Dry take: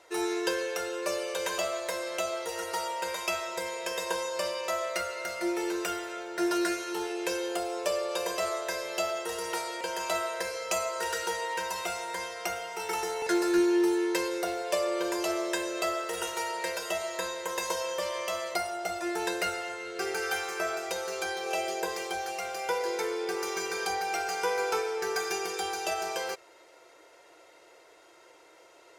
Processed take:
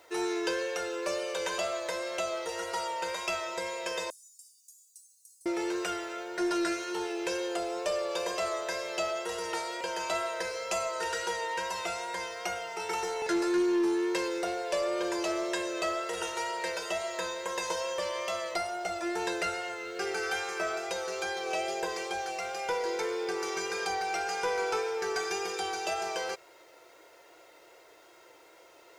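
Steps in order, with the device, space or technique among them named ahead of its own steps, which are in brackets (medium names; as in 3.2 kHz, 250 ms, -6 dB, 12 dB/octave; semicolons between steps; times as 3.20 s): compact cassette (saturation -21.5 dBFS, distortion -20 dB; low-pass 8.2 kHz 12 dB/octave; wow and flutter 26 cents; white noise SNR 37 dB); 4.10–5.46 s: inverse Chebyshev high-pass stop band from 2.1 kHz, stop band 70 dB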